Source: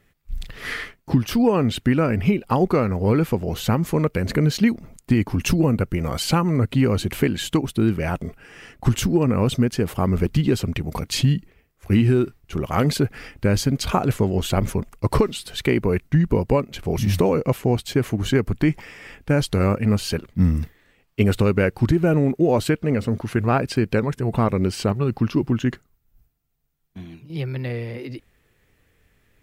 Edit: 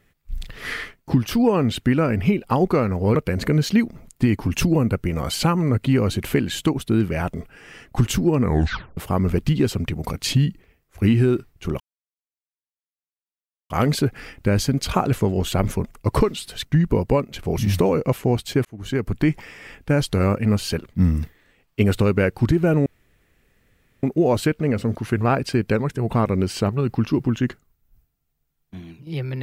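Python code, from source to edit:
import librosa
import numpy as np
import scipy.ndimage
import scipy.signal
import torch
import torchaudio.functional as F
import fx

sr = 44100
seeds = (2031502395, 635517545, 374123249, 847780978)

y = fx.edit(x, sr, fx.cut(start_s=3.15, length_s=0.88),
    fx.tape_stop(start_s=9.3, length_s=0.55),
    fx.insert_silence(at_s=12.68, length_s=1.9),
    fx.cut(start_s=15.63, length_s=0.42),
    fx.fade_in_span(start_s=18.05, length_s=0.51),
    fx.insert_room_tone(at_s=22.26, length_s=1.17), tone=tone)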